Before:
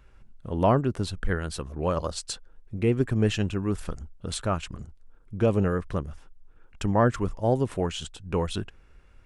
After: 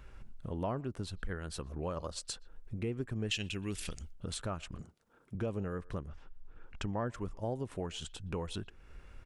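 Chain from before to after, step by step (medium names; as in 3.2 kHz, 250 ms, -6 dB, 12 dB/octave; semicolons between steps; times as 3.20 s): 3.31–4.13 s: resonant high shelf 1.8 kHz +12 dB, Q 1.5; 4.81–5.35 s: high-pass 170 Hz 12 dB/octave; speakerphone echo 120 ms, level -27 dB; compression 2.5:1, threshold -45 dBFS, peak gain reduction 19.5 dB; 6.07–7.04 s: low-pass 3.8 kHz -> 7.1 kHz 12 dB/octave; trim +3 dB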